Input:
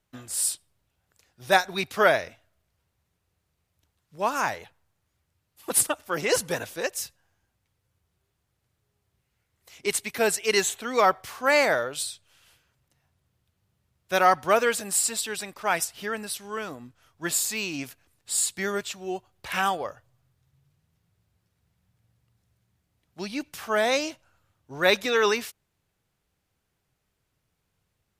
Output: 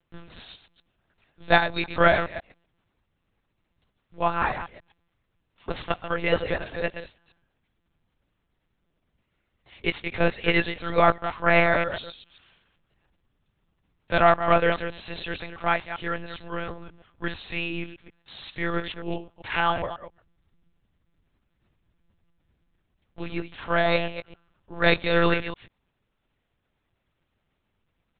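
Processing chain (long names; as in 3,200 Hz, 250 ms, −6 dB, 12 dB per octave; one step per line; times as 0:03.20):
delay that plays each chunk backwards 133 ms, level −10 dB
one-pitch LPC vocoder at 8 kHz 170 Hz
level +1.5 dB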